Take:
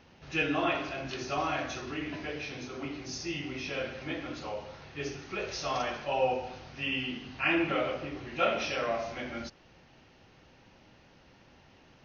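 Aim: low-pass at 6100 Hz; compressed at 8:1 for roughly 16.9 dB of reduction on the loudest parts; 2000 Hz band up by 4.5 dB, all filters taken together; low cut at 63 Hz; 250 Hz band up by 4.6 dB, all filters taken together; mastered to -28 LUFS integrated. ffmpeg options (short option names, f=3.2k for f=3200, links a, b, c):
-af "highpass=63,lowpass=6.1k,equalizer=f=250:t=o:g=6,equalizer=f=2k:t=o:g=6,acompressor=threshold=-38dB:ratio=8,volume=13dB"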